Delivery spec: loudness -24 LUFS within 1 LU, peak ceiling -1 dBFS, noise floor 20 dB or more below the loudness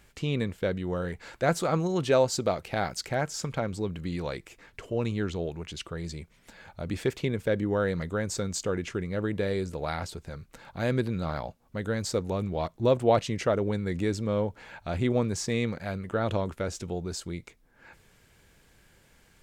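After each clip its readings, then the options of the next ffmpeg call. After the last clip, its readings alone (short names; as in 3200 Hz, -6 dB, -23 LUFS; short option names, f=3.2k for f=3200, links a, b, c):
loudness -30.0 LUFS; peak -10.5 dBFS; loudness target -24.0 LUFS
-> -af "volume=6dB"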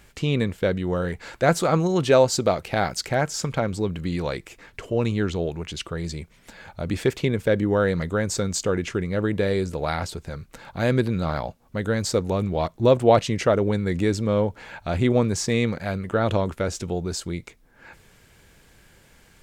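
loudness -24.0 LUFS; peak -4.5 dBFS; noise floor -56 dBFS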